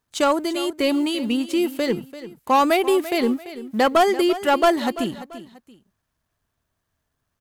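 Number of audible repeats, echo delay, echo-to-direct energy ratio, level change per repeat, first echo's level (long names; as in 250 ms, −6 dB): 2, 340 ms, −14.0 dB, −9.5 dB, −14.5 dB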